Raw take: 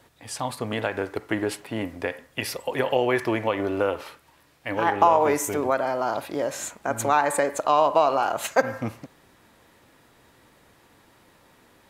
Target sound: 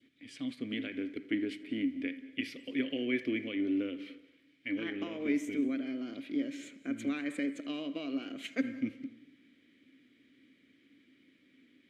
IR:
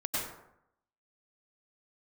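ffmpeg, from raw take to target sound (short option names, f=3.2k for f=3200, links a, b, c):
-filter_complex "[0:a]asplit=3[a][b][c];[a]bandpass=f=270:t=q:w=8,volume=0dB[d];[b]bandpass=f=2.29k:t=q:w=8,volume=-6dB[e];[c]bandpass=f=3.01k:t=q:w=8,volume=-9dB[f];[d][e][f]amix=inputs=3:normalize=0,adynamicequalizer=threshold=0.00178:dfrequency=1100:dqfactor=0.84:tfrequency=1100:tqfactor=0.84:attack=5:release=100:ratio=0.375:range=2.5:mode=cutabove:tftype=bell,asplit=2[g][h];[1:a]atrim=start_sample=2205,adelay=80[i];[h][i]afir=irnorm=-1:irlink=0,volume=-22.5dB[j];[g][j]amix=inputs=2:normalize=0,volume=4.5dB"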